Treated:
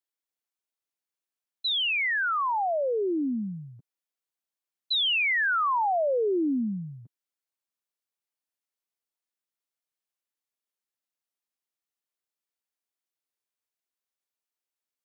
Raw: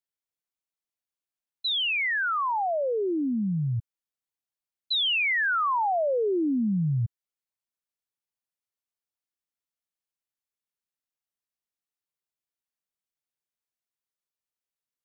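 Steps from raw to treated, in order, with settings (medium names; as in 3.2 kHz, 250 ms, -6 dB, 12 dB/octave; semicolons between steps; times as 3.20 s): high-pass 220 Hz 24 dB/octave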